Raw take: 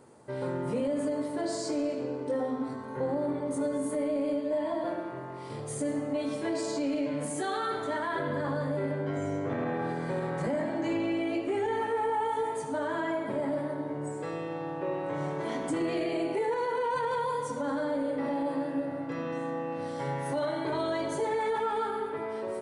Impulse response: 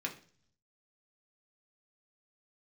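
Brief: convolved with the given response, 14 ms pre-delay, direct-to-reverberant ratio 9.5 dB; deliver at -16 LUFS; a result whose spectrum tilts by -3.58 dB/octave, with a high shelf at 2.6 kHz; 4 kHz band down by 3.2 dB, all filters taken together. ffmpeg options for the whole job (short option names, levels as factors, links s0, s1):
-filter_complex "[0:a]highshelf=f=2600:g=5,equalizer=f=4000:t=o:g=-8.5,asplit=2[s0][s1];[1:a]atrim=start_sample=2205,adelay=14[s2];[s1][s2]afir=irnorm=-1:irlink=0,volume=0.251[s3];[s0][s3]amix=inputs=2:normalize=0,volume=5.62"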